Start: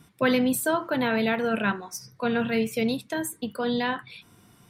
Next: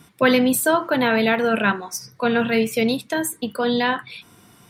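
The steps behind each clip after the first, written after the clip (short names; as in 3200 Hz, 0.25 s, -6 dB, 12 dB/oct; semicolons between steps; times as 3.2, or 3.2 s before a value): low shelf 170 Hz -6.5 dB; gain +7 dB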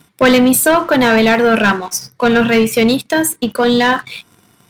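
sample leveller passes 2; gain +2 dB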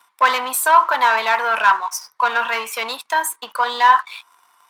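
resonant high-pass 1000 Hz, resonance Q 4.9; gain -7 dB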